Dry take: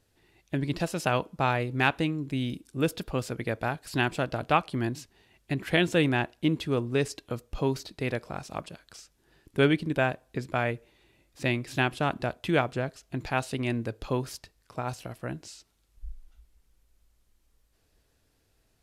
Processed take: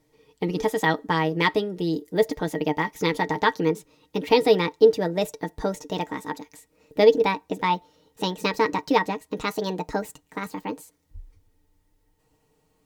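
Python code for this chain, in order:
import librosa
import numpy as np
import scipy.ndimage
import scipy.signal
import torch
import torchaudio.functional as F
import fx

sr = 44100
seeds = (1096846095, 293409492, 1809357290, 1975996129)

y = fx.speed_glide(x, sr, from_pct=126, to_pct=167)
y = y + 0.44 * np.pad(y, (int(6.4 * sr / 1000.0), 0))[:len(y)]
y = fx.small_body(y, sr, hz=(290.0, 440.0, 890.0, 1900.0), ring_ms=75, db=14)
y = y * 10.0 ** (-1.0 / 20.0)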